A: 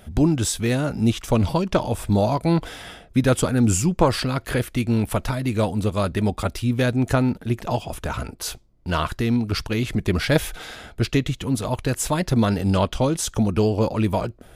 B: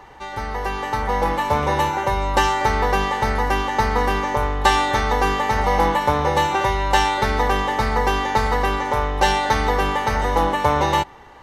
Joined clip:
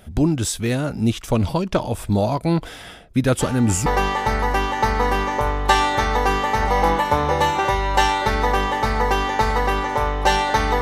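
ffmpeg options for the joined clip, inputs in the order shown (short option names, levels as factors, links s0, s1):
-filter_complex "[1:a]asplit=2[s0][s1];[0:a]apad=whole_dur=10.81,atrim=end=10.81,atrim=end=3.862[s2];[s1]atrim=start=2.818:end=9.77[s3];[s0]atrim=start=2.35:end=2.82,asetpts=PTS-STARTPTS,volume=0.188,afade=t=in:d=0.004:c=hsin,afade=t=out:st=0.466:d=0.004:c=hsin,adelay=3390[s4];[s2][s3]acrossfade=d=0.004:c1=hsin:c2=hsin[s5];[s5][s4]amix=inputs=2:normalize=0"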